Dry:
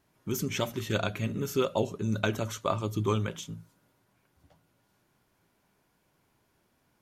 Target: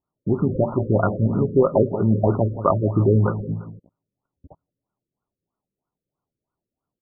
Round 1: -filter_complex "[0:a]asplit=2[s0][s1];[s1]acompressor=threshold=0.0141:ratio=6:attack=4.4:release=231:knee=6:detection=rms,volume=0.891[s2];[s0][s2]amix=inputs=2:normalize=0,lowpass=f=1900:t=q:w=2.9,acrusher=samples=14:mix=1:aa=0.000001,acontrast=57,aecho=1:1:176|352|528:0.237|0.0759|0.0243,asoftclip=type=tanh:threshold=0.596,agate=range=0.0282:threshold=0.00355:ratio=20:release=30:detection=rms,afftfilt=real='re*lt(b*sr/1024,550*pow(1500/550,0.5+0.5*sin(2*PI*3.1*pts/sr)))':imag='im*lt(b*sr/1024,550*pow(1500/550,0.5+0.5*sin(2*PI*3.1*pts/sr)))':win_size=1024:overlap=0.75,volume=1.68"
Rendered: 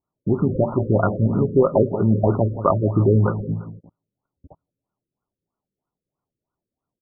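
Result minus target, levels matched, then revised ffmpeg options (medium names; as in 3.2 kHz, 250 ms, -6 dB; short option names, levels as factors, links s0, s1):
compression: peak gain reduction -7 dB
-filter_complex "[0:a]asplit=2[s0][s1];[s1]acompressor=threshold=0.00531:ratio=6:attack=4.4:release=231:knee=6:detection=rms,volume=0.891[s2];[s0][s2]amix=inputs=2:normalize=0,lowpass=f=1900:t=q:w=2.9,acrusher=samples=14:mix=1:aa=0.000001,acontrast=57,aecho=1:1:176|352|528:0.237|0.0759|0.0243,asoftclip=type=tanh:threshold=0.596,agate=range=0.0282:threshold=0.00355:ratio=20:release=30:detection=rms,afftfilt=real='re*lt(b*sr/1024,550*pow(1500/550,0.5+0.5*sin(2*PI*3.1*pts/sr)))':imag='im*lt(b*sr/1024,550*pow(1500/550,0.5+0.5*sin(2*PI*3.1*pts/sr)))':win_size=1024:overlap=0.75,volume=1.68"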